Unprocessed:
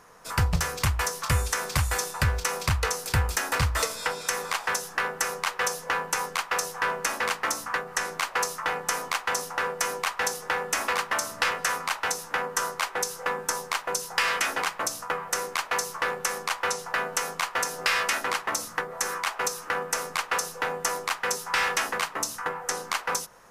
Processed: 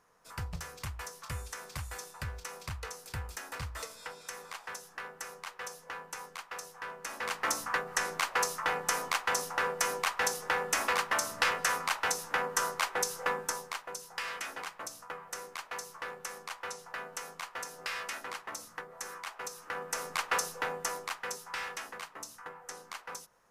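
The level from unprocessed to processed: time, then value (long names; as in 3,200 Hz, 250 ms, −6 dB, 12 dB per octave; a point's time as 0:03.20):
0:06.98 −15 dB
0:07.50 −3 dB
0:13.30 −3 dB
0:13.92 −13 dB
0:19.46 −13 dB
0:20.33 −3 dB
0:21.83 −15 dB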